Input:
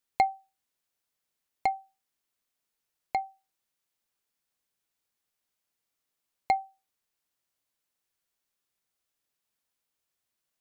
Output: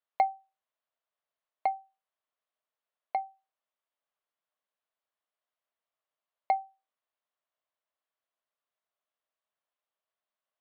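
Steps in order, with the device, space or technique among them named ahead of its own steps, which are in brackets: phone earpiece (cabinet simulation 340–3400 Hz, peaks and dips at 340 Hz -7 dB, 630 Hz +9 dB, 1.1 kHz +6 dB, 2.4 kHz -4 dB); trim -4.5 dB

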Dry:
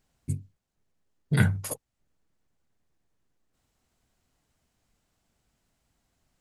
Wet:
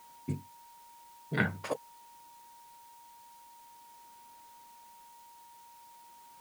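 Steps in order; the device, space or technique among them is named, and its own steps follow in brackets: shortwave radio (band-pass 260–2900 Hz; tremolo 0.46 Hz, depth 80%; whistle 940 Hz -62 dBFS; white noise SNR 19 dB); trim +8.5 dB

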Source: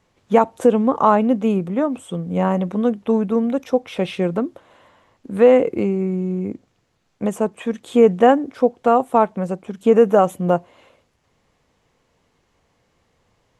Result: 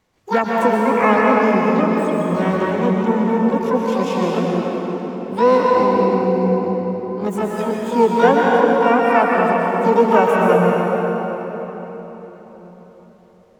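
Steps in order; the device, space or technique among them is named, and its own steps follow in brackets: shimmer-style reverb (harmony voices +12 st -5 dB; reverberation RT60 4.3 s, pre-delay 115 ms, DRR -3.5 dB); trim -4 dB

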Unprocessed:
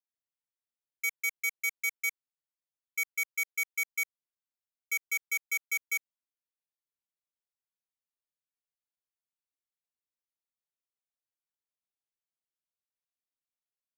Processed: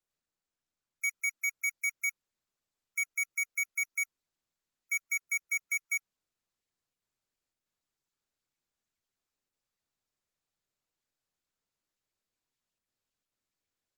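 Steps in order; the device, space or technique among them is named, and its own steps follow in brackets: noise-suppressed video call (high-pass 140 Hz 6 dB/octave; spectral gate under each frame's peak -25 dB strong; Opus 16 kbps 48 kHz)

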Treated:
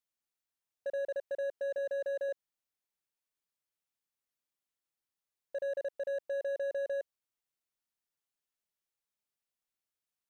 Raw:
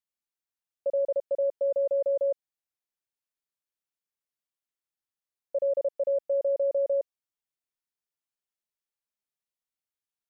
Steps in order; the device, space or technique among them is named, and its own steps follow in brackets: clipper into limiter (hard clipper -25.5 dBFS, distortion -16 dB; peak limiter -32 dBFS, peak gain reduction 6.5 dB); 1.78–2.29 s: high-pass 240 Hz

